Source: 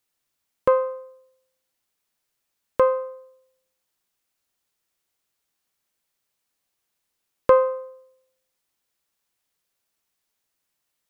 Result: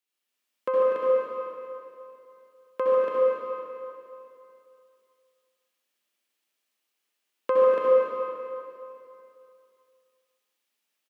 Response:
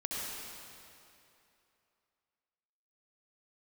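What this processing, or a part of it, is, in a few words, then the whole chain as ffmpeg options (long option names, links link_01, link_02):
stadium PA: -filter_complex "[0:a]highpass=frequency=210:width=0.5412,highpass=frequency=210:width=1.3066,equalizer=frequency=2800:width_type=o:width=0.92:gain=6,aecho=1:1:145.8|244.9|285.7:0.316|0.355|0.631[link_01];[1:a]atrim=start_sample=2205[link_02];[link_01][link_02]afir=irnorm=-1:irlink=0,volume=-8dB"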